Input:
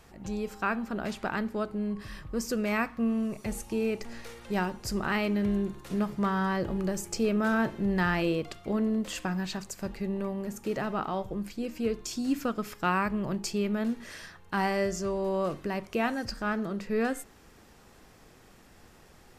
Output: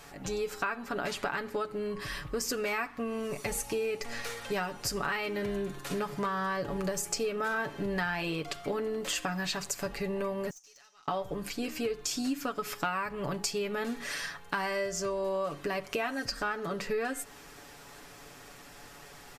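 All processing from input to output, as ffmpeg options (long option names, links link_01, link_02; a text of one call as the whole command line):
ffmpeg -i in.wav -filter_complex "[0:a]asettb=1/sr,asplit=3[link_01][link_02][link_03];[link_01]atrim=end=10.504[link_04];[link_02]atrim=start=10.5:end=11.08,asetpts=PTS-STARTPTS,afade=type=in:duration=0.004:curve=qsin,afade=type=out:start_time=0.576:duration=0.004:curve=qsin,bandpass=frequency=6000:width_type=q:width=8.3,aeval=exprs='(tanh(631*val(0)+0.3)-tanh(0.3))/631':channel_layout=same[link_05];[link_03]atrim=start=11.076[link_06];[link_04][link_05]acrossfade=duration=0.004:curve1=hsin:curve2=qsin[link_07];[link_07][link_06]acrossfade=duration=0.004:curve1=qsin:curve2=hsin,lowshelf=frequency=430:gain=-9,aecho=1:1:7:0.67,acompressor=threshold=-37dB:ratio=6,volume=7.5dB" out.wav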